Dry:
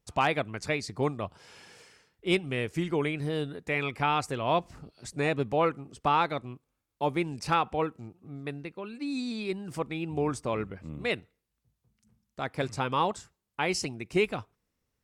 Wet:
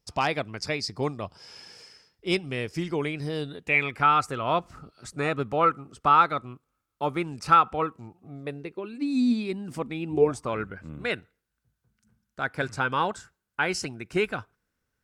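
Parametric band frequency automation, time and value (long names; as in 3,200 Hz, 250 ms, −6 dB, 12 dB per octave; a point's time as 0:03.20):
parametric band +14 dB 0.29 octaves
0:03.38 5,100 Hz
0:04.04 1,300 Hz
0:07.80 1,300 Hz
0:09.09 240 Hz
0:10.08 240 Hz
0:10.52 1,500 Hz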